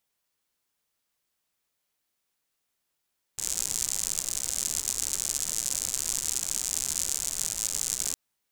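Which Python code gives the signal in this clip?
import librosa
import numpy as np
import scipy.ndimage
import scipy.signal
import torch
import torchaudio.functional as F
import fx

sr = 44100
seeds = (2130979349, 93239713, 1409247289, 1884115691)

y = fx.rain(sr, seeds[0], length_s=4.76, drops_per_s=110.0, hz=7200.0, bed_db=-15)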